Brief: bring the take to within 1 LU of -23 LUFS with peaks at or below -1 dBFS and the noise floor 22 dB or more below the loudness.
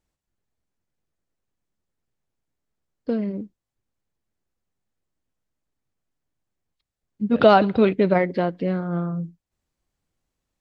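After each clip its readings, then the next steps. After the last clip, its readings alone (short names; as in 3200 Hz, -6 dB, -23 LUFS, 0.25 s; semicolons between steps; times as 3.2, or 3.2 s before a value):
loudness -21.0 LUFS; peak -1.5 dBFS; loudness target -23.0 LUFS
-> gain -2 dB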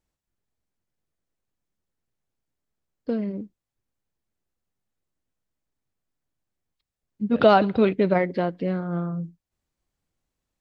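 loudness -23.0 LUFS; peak -3.5 dBFS; noise floor -87 dBFS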